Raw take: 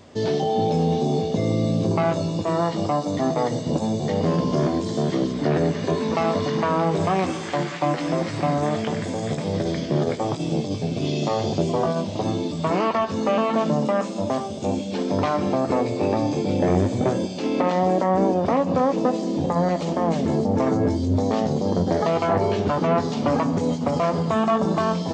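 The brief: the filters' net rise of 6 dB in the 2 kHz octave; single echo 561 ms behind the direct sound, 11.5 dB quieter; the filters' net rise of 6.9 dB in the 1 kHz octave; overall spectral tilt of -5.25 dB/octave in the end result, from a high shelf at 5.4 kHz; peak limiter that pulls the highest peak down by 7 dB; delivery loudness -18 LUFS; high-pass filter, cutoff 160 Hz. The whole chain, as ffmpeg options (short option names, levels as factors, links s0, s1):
-af "highpass=160,equalizer=f=1000:t=o:g=8,equalizer=f=2000:t=o:g=5.5,highshelf=f=5400:g=-5.5,alimiter=limit=0.266:level=0:latency=1,aecho=1:1:561:0.266,volume=1.58"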